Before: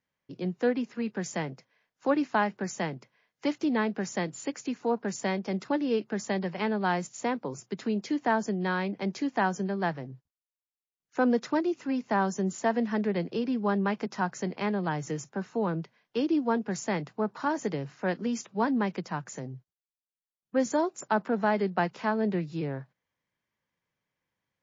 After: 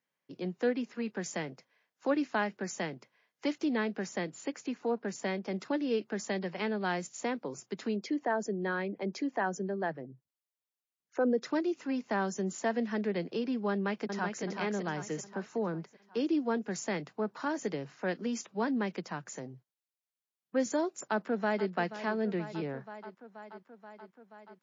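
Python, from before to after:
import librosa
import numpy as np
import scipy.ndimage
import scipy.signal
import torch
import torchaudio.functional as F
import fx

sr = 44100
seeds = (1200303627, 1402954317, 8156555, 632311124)

y = fx.high_shelf(x, sr, hz=5200.0, db=-7.5, at=(4.07, 5.56))
y = fx.envelope_sharpen(y, sr, power=1.5, at=(7.95, 11.45), fade=0.02)
y = fx.echo_throw(y, sr, start_s=13.71, length_s=0.73, ms=380, feedback_pct=50, wet_db=-5.0)
y = fx.dynamic_eq(y, sr, hz=3100.0, q=1.7, threshold_db=-58.0, ratio=4.0, max_db=-7, at=(15.45, 16.2))
y = fx.echo_throw(y, sr, start_s=21.02, length_s=0.68, ms=480, feedback_pct=75, wet_db=-13.0)
y = scipy.signal.sosfilt(scipy.signal.bessel(2, 220.0, 'highpass', norm='mag', fs=sr, output='sos'), y)
y = fx.dynamic_eq(y, sr, hz=940.0, q=1.5, threshold_db=-41.0, ratio=4.0, max_db=-6)
y = F.gain(torch.from_numpy(y), -1.5).numpy()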